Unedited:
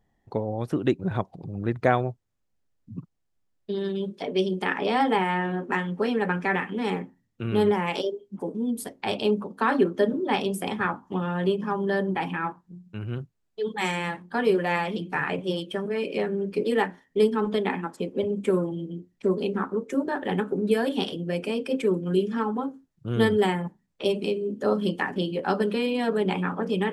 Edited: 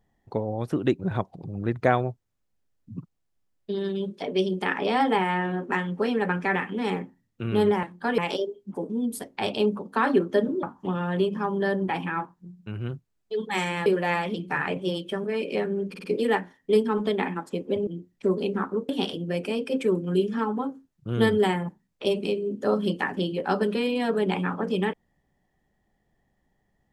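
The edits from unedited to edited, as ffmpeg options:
-filter_complex "[0:a]asplit=10[s0][s1][s2][s3][s4][s5][s6][s7][s8][s9];[s0]atrim=end=7.832[s10];[s1]atrim=start=14.128:end=14.482[s11];[s2]atrim=start=7.828:end=10.282[s12];[s3]atrim=start=10.898:end=14.132[s13];[s4]atrim=start=14.478:end=16.562[s14];[s5]atrim=start=16.508:end=16.562[s15];[s6]atrim=start=16.508:end=16.562[s16];[s7]atrim=start=16.508:end=18.342[s17];[s8]atrim=start=18.868:end=19.892[s18];[s9]atrim=start=20.878[s19];[s10][s11]acrossfade=d=0.004:c1=hsin:c2=hsin[s20];[s20][s12]acrossfade=d=0.004:c1=hsin:c2=hsin[s21];[s21][s13]acrossfade=d=0.004:c1=hsin:c2=hsin[s22];[s22][s14]acrossfade=d=0.004:c1=hsin:c2=hsin[s23];[s23][s15]acrossfade=d=0.004:c1=hsin:c2=hsin[s24];[s24][s16]acrossfade=d=0.004:c1=hsin:c2=hsin[s25];[s25][s17]acrossfade=d=0.004:c1=hsin:c2=hsin[s26];[s26][s18]acrossfade=d=0.004:c1=hsin:c2=hsin[s27];[s27][s19]acrossfade=d=0.004:c1=hsin:c2=hsin"

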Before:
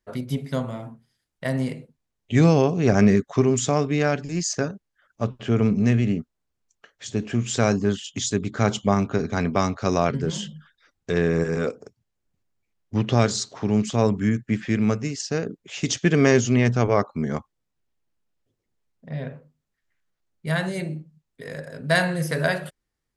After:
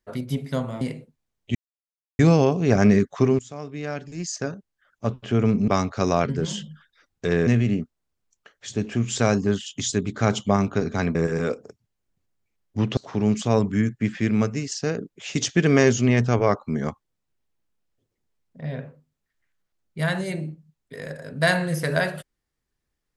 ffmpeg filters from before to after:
-filter_complex "[0:a]asplit=8[s0][s1][s2][s3][s4][s5][s6][s7];[s0]atrim=end=0.812[s8];[s1]atrim=start=1.618:end=2.36,asetpts=PTS-STARTPTS,afade=t=out:st=0.738:d=0.004:c=hsin,apad=pad_dur=0.64[s9];[s2]atrim=start=2.36:end=3.56,asetpts=PTS-STARTPTS,afade=t=in:d=0.004:c=hsin,afade=t=out:st=1.196:d=0.004:c=hsin:silence=0.0891251[s10];[s3]atrim=start=3.56:end=5.852,asetpts=PTS-STARTPTS,afade=t=in:d=1.67:silence=0.0891251[s11];[s4]atrim=start=9.528:end=11.322[s12];[s5]atrim=start=5.848:end=9.532[s13];[s6]atrim=start=11.318:end=13.142[s14];[s7]atrim=start=13.448[s15];[s9][s10][s11]concat=n=3:v=0:a=1[s16];[s8][s16]acrossfade=d=0.004:c1=hsin:c2=hsin[s17];[s17][s12]acrossfade=d=0.004:c1=hsin:c2=hsin[s18];[s18][s13]acrossfade=d=0.004:c1=hsin:c2=hsin[s19];[s19][s14]acrossfade=d=0.004:c1=hsin:c2=hsin[s20];[s20][s15]acrossfade=d=0.004:c1=hsin:c2=hsin"

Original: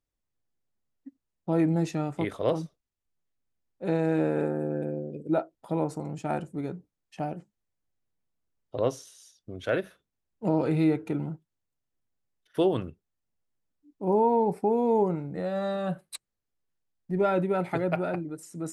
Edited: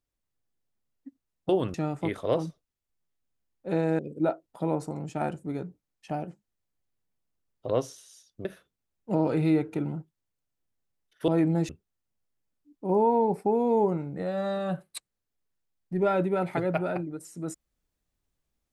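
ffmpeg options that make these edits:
-filter_complex "[0:a]asplit=7[s0][s1][s2][s3][s4][s5][s6];[s0]atrim=end=1.492[s7];[s1]atrim=start=12.618:end=12.872[s8];[s2]atrim=start=1.898:end=4.152[s9];[s3]atrim=start=5.078:end=9.542[s10];[s4]atrim=start=9.788:end=12.622[s11];[s5]atrim=start=1.488:end=1.902[s12];[s6]atrim=start=12.868[s13];[s7][s8]acrossfade=d=0.004:c1=hsin:c2=hsin[s14];[s14][s9]acrossfade=d=0.004:c1=hsin:c2=hsin[s15];[s15][s10]acrossfade=d=0.004:c1=hsin:c2=hsin[s16];[s16][s11]acrossfade=d=0.004:c1=hsin:c2=hsin[s17];[s17][s12]acrossfade=d=0.004:c1=hsin:c2=hsin[s18];[s18][s13]acrossfade=d=0.004:c1=hsin:c2=hsin"

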